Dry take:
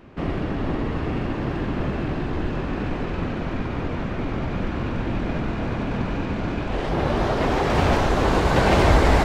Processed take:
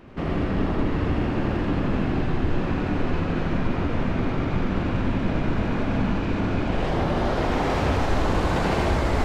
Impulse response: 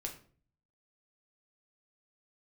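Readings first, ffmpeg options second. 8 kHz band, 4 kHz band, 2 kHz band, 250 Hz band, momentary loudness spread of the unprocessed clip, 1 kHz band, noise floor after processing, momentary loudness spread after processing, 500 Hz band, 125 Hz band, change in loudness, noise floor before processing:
n/a, -3.0 dB, -2.5 dB, +0.5 dB, 9 LU, -3.0 dB, -26 dBFS, 3 LU, -2.5 dB, -0.5 dB, -1.0 dB, -28 dBFS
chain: -filter_complex "[0:a]acompressor=threshold=-22dB:ratio=6,asplit=2[a][b];[1:a]atrim=start_sample=2205,asetrate=26019,aresample=44100,adelay=82[c];[b][c]afir=irnorm=-1:irlink=0,volume=-3.5dB[d];[a][d]amix=inputs=2:normalize=0"

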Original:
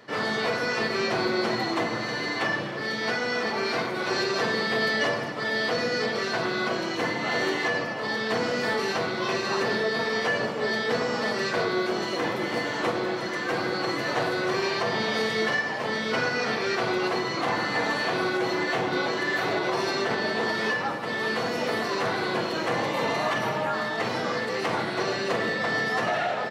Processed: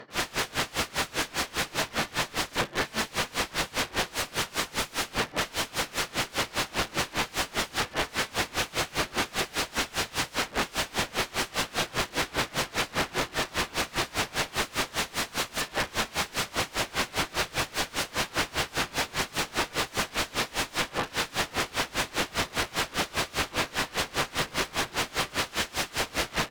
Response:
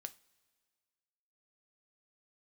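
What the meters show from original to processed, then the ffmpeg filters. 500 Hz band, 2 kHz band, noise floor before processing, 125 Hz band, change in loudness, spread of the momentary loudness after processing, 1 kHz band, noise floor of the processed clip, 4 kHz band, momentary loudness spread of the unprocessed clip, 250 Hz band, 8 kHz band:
-8.5 dB, -4.0 dB, -31 dBFS, -1.5 dB, -2.5 dB, 1 LU, -3.5 dB, -50 dBFS, +1.5 dB, 3 LU, -7.0 dB, +9.5 dB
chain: -filter_complex "[0:a]aeval=exprs='(mod(21.1*val(0)+1,2)-1)/21.1':c=same,aemphasis=mode=reproduction:type=50kf,asplit=2[a][b];[1:a]atrim=start_sample=2205,asetrate=35280,aresample=44100[c];[b][c]afir=irnorm=-1:irlink=0,volume=10.5dB[d];[a][d]amix=inputs=2:normalize=0,aeval=exprs='val(0)*pow(10,-26*(0.5-0.5*cos(2*PI*5*n/s))/20)':c=same"

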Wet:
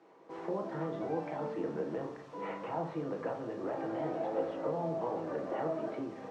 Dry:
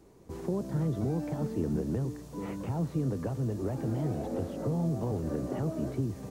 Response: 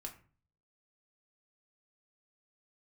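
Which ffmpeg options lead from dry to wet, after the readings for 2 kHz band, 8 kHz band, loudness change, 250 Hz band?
+4.0 dB, under -10 dB, -4.5 dB, -7.0 dB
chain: -filter_complex "[0:a]highpass=570,lowpass=2.5k[a];[1:a]atrim=start_sample=2205,asetrate=33075,aresample=44100[b];[a][b]afir=irnorm=-1:irlink=0,volume=7.5dB"

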